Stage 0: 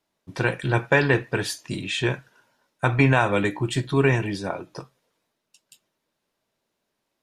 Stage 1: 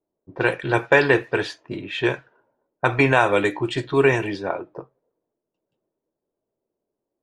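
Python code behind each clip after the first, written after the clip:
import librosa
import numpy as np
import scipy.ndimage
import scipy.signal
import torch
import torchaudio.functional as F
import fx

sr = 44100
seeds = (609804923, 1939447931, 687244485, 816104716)

y = fx.env_lowpass(x, sr, base_hz=440.0, full_db=-18.0)
y = fx.low_shelf_res(y, sr, hz=280.0, db=-6.5, q=1.5)
y = F.gain(torch.from_numpy(y), 3.0).numpy()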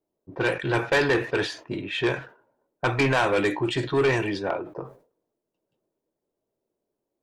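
y = 10.0 ** (-16.0 / 20.0) * np.tanh(x / 10.0 ** (-16.0 / 20.0))
y = fx.sustainer(y, sr, db_per_s=140.0)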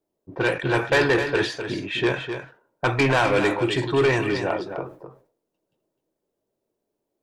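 y = x + 10.0 ** (-8.5 / 20.0) * np.pad(x, (int(256 * sr / 1000.0), 0))[:len(x)]
y = F.gain(torch.from_numpy(y), 2.0).numpy()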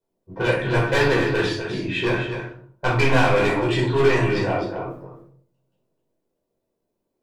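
y = np.clip(x, -10.0 ** (-16.0 / 20.0), 10.0 ** (-16.0 / 20.0))
y = fx.room_shoebox(y, sr, seeds[0], volume_m3=460.0, walls='furnished', distance_m=4.9)
y = F.gain(torch.from_numpy(y), -6.5).numpy()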